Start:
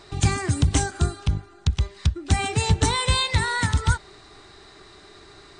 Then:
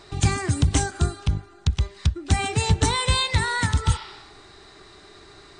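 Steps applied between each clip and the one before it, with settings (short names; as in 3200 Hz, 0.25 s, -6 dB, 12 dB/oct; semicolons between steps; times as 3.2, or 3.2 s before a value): spectral repair 3.91–4.31, 780–5700 Hz both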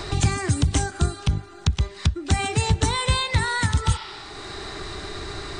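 three-band squash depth 70%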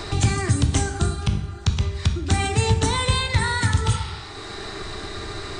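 reverb RT60 0.75 s, pre-delay 9 ms, DRR 5.5 dB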